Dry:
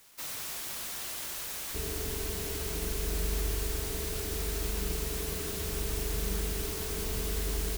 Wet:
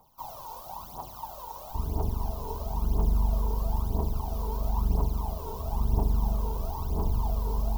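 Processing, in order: FFT filter 130 Hz 0 dB, 440 Hz -6 dB, 930 Hz +12 dB, 1.8 kHz -30 dB, 3 kHz -18 dB, 5.5 kHz -15 dB, 9 kHz -24 dB, 14 kHz -10 dB; phaser 1 Hz, delay 2.3 ms, feedback 69%; AM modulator 170 Hz, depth 25%; trim +2.5 dB

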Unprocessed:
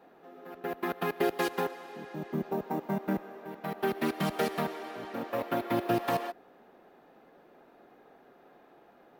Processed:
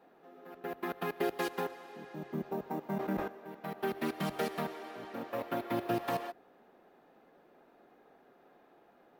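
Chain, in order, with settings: de-hum 46.3 Hz, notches 3; 2.81–3.28 s: decay stretcher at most 39 dB/s; trim -4.5 dB

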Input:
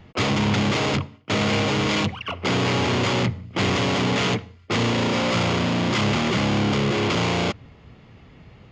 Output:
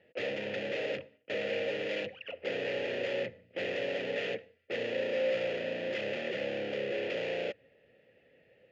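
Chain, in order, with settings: vowel filter e

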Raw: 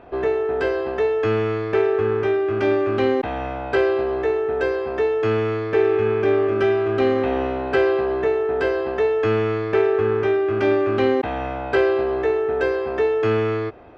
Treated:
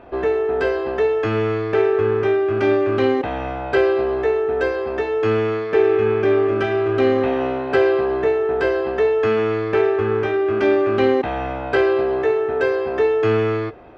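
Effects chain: flange 0.2 Hz, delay 3.3 ms, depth 4.6 ms, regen -72%; trim +6 dB

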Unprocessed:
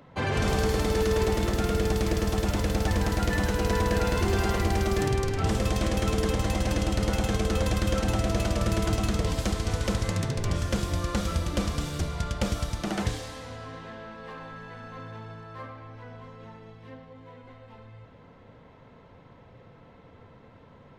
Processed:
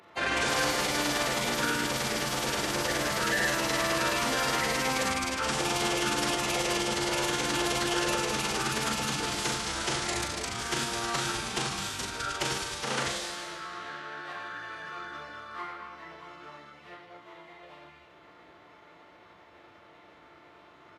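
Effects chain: reverse bouncing-ball echo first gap 40 ms, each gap 1.25×, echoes 5; formant-preserving pitch shift -7 st; high-pass 1.1 kHz 6 dB/octave; trim +5 dB

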